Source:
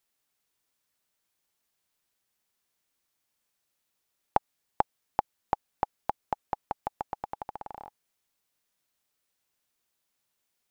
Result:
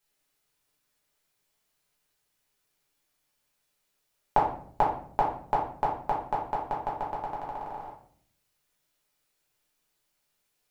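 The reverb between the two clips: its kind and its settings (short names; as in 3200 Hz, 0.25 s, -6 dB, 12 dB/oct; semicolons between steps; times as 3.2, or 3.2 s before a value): shoebox room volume 73 m³, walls mixed, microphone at 1.4 m; gain -2.5 dB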